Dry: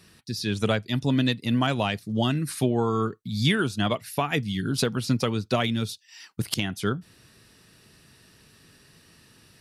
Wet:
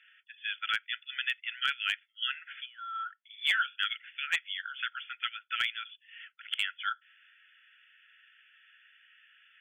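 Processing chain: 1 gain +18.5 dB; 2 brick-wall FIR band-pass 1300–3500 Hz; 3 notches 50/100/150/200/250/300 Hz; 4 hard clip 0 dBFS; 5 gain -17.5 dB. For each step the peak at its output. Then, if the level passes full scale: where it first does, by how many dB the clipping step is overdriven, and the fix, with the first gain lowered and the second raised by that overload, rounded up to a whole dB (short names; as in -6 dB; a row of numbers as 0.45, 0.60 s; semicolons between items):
+9.0, +6.0, +6.0, 0.0, -17.5 dBFS; step 1, 6.0 dB; step 1 +12.5 dB, step 5 -11.5 dB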